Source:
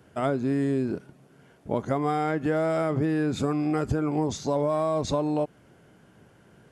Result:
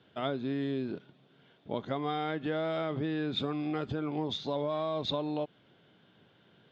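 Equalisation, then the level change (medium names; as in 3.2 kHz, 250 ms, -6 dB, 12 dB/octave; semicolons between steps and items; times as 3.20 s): high-pass 110 Hz; four-pole ladder low-pass 3.8 kHz, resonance 75%; +4.5 dB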